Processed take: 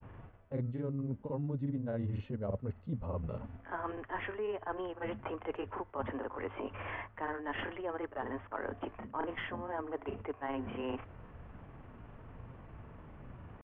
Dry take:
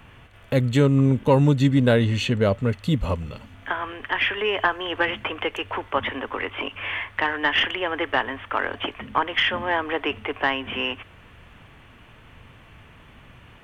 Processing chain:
low-pass filter 1,000 Hz 12 dB per octave
reversed playback
downward compressor 6 to 1, threshold −34 dBFS, peak gain reduction 20 dB
reversed playback
granular cloud, spray 30 ms, pitch spread up and down by 0 semitones

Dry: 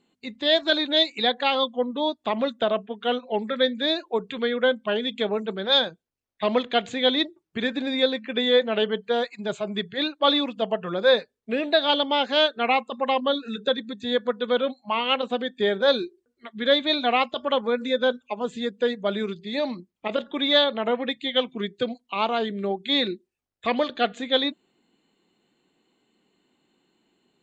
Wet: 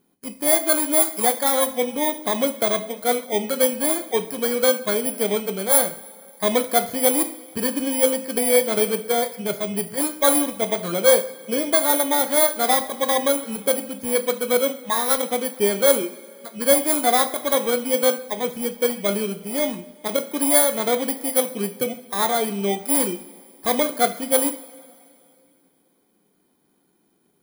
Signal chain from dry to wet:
samples in bit-reversed order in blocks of 16 samples
coupled-rooms reverb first 0.45 s, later 2.7 s, from −18 dB, DRR 7.5 dB
level +2.5 dB

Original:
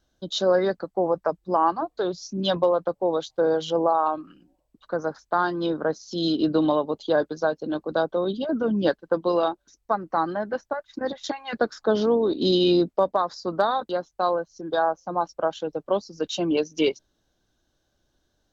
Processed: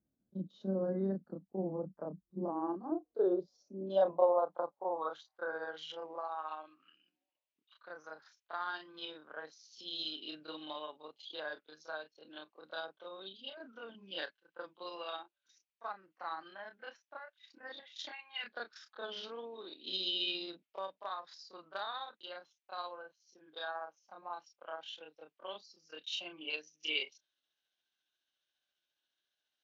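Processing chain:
band-pass filter sweep 200 Hz → 2,700 Hz, 0:01.38–0:03.97
time stretch by overlap-add 1.6×, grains 139 ms
level −1.5 dB

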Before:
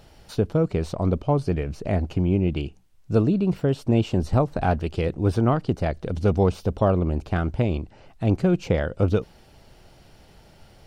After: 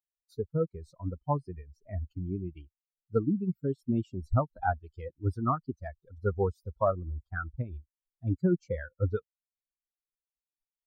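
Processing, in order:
spectral dynamics exaggerated over time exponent 3
high shelf with overshoot 1,900 Hz −11 dB, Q 3
level −2 dB

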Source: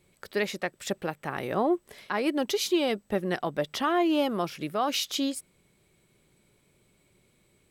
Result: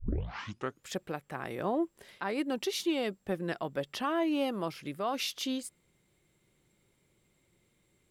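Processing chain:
turntable start at the beginning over 0.83 s
speed change −5%
level −5.5 dB

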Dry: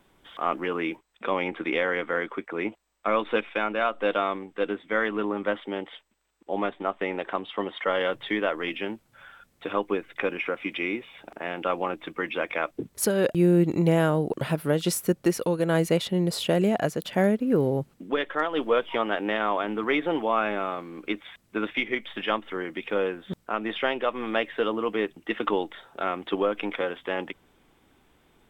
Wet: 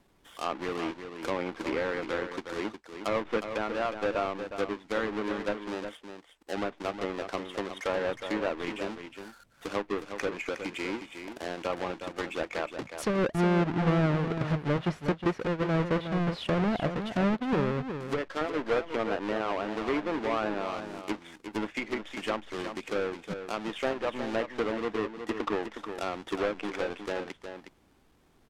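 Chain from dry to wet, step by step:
each half-wave held at its own peak
treble cut that deepens with the level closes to 2,300 Hz, closed at −19 dBFS
on a send: single-tap delay 363 ms −8.5 dB
on the sum: level −8.5 dB

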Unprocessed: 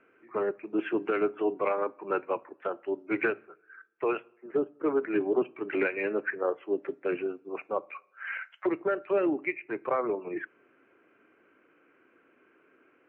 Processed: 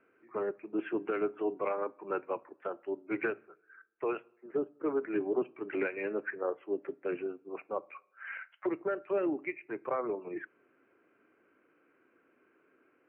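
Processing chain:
high-frequency loss of the air 250 metres
level −4 dB

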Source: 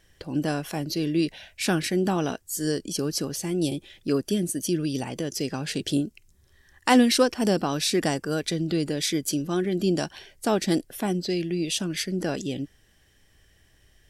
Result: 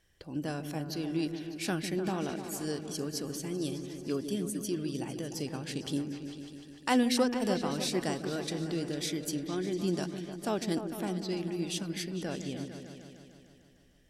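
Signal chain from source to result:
echo whose low-pass opens from repeat to repeat 150 ms, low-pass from 400 Hz, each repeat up 2 octaves, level −6 dB
harmonic generator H 5 −45 dB, 7 −36 dB, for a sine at −6 dBFS
level −8.5 dB

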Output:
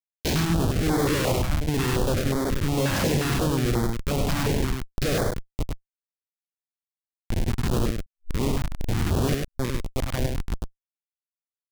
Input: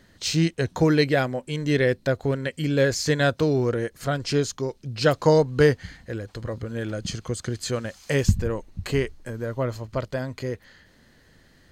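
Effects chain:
peak hold with a decay on every bin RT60 1.08 s
0:01.07–0:01.53: parametric band 780 Hz +2.5 dB 2.4 octaves
0:05.23–0:07.32: downward compressor 5 to 1, threshold −27 dBFS, peak gain reduction 14 dB
comparator with hysteresis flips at −19.5 dBFS
0:07.96–0:09.48: reverse
single-tap delay 101 ms −3.5 dB
notch on a step sequencer 5.6 Hz 430–2,700 Hz

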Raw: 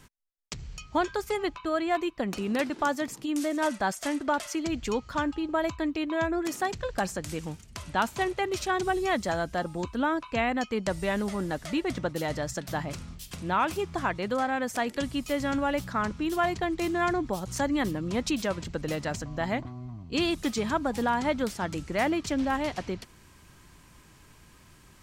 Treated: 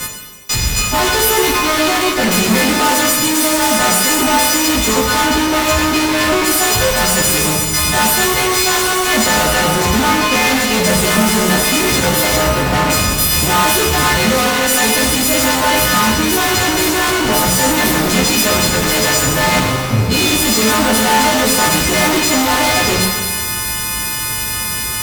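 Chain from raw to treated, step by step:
every partial snapped to a pitch grid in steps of 3 semitones
0:12.36–0:12.90: low-pass filter 1,500 Hz 24 dB per octave
fuzz pedal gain 47 dB, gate −54 dBFS
reverb with rising layers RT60 1.2 s, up +12 semitones, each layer −8 dB, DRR 0 dB
level −2 dB

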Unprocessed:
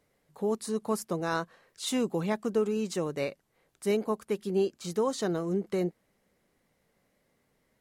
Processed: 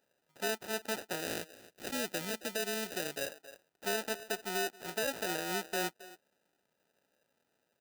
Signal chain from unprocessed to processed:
far-end echo of a speakerphone 270 ms, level −16 dB
sample-rate reduction 1,100 Hz, jitter 0%
high-pass filter 780 Hz 6 dB per octave
high-shelf EQ 11,000 Hz +4.5 dB
brickwall limiter −16.5 dBFS, peak gain reduction 5 dB
0:01.20–0:03.28: parametric band 1,000 Hz −8 dB 0.96 octaves

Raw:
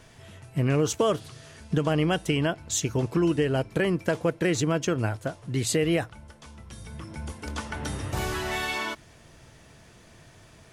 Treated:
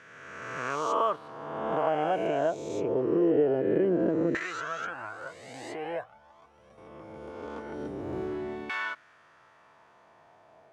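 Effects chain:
peak hold with a rise ahead of every peak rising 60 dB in 1.73 s
auto-filter band-pass saw down 0.23 Hz 280–1,600 Hz
0:04.37–0:06.78: flanger whose copies keep moving one way rising 1.5 Hz
level +2 dB

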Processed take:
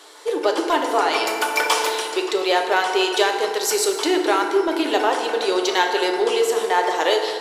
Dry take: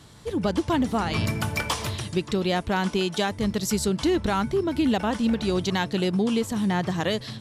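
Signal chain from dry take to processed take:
elliptic high-pass filter 380 Hz, stop band 60 dB
in parallel at −11 dB: hard clipping −29 dBFS, distortion −7 dB
on the sum: feedback delay network reverb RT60 2 s, low-frequency decay 1.25×, high-frequency decay 0.55×, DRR 2.5 dB
level +6 dB

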